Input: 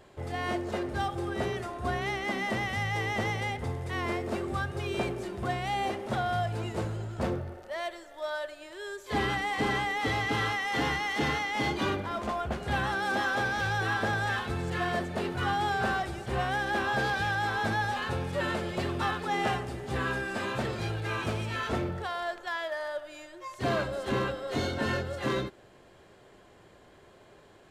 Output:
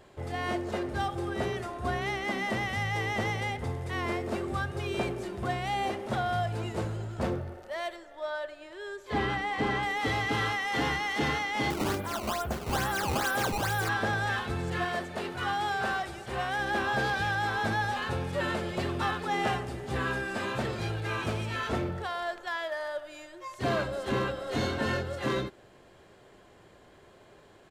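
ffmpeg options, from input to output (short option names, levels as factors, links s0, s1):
-filter_complex "[0:a]asettb=1/sr,asplit=3[s0][s1][s2];[s0]atrim=end=7.964[s3];[s1]atrim=start=7.96:end=9.83,asetpts=PTS-STARTPTS,afade=t=in:d=0.004:c=qsin,afade=t=out:st=1.866:d=0.004:c=qsin,lowpass=f=3200:p=1[s4];[s2]atrim=start=9.826[s5];[s3][s4]acrossfade=d=0.004:c1=hsin:c2=qsin[s6];[s6][s5]acrossfade=d=0.004:c1=qsin:c2=hsin,asettb=1/sr,asplit=3[s7][s8][s9];[s7]atrim=end=11.704[s10];[s8]atrim=start=11.7:end=13.89,asetpts=PTS-STARTPTS,afade=t=in:d=0.004:c=qsin,afade=t=out:st=2.186:d=0.004:c=qsin,acrusher=samples=15:mix=1:aa=0.000001:lfo=1:lforange=24:lforate=2.3[s11];[s9]atrim=start=13.886[s12];[s10][s11]acrossfade=d=0.004:c1=hsin:c2=qsin[s13];[s13][s12]acrossfade=d=0.004:c1=qsin:c2=hsin,asettb=1/sr,asplit=3[s14][s15][s16];[s14]atrim=end=14.854[s17];[s15]atrim=start=14.85:end=16.59,asetpts=PTS-STARTPTS,afade=t=in:d=0.004:c=qsin,afade=t=out:st=1.736:d=0.004:c=qsin,lowshelf=f=380:g=-7.5[s18];[s16]atrim=start=16.586[s19];[s17][s18]acrossfade=d=0.004:c1=hsin:c2=qsin[s20];[s20][s19]acrossfade=d=0.004:c1=qsin:c2=hsin,asplit=2[s21][s22];[s22]afade=t=in:st=23.88:d=0.01,afade=t=out:st=24.45:d=0.01,aecho=0:1:470|940:0.421697|0.0632545[s23];[s21][s23]amix=inputs=2:normalize=0"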